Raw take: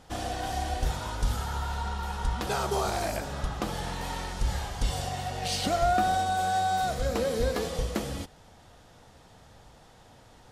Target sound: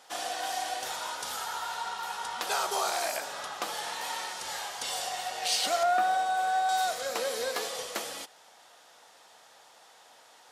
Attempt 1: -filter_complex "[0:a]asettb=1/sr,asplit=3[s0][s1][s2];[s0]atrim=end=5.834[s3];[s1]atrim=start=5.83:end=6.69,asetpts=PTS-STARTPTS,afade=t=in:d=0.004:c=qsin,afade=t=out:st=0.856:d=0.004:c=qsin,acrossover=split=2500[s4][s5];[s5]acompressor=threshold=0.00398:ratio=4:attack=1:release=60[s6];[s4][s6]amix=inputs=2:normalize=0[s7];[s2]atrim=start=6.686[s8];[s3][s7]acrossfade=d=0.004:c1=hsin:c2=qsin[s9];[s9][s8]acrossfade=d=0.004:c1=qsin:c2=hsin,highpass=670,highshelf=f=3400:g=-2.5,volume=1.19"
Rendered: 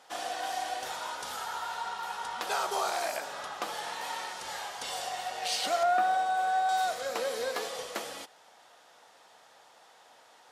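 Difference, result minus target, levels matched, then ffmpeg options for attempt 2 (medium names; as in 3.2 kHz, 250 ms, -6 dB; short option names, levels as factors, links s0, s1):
8 kHz band -3.5 dB
-filter_complex "[0:a]asettb=1/sr,asplit=3[s0][s1][s2];[s0]atrim=end=5.834[s3];[s1]atrim=start=5.83:end=6.69,asetpts=PTS-STARTPTS,afade=t=in:d=0.004:c=qsin,afade=t=out:st=0.856:d=0.004:c=qsin,acrossover=split=2500[s4][s5];[s5]acompressor=threshold=0.00398:ratio=4:attack=1:release=60[s6];[s4][s6]amix=inputs=2:normalize=0[s7];[s2]atrim=start=6.686[s8];[s3][s7]acrossfade=d=0.004:c1=hsin:c2=qsin[s9];[s9][s8]acrossfade=d=0.004:c1=qsin:c2=hsin,highpass=670,highshelf=f=3400:g=3.5,volume=1.19"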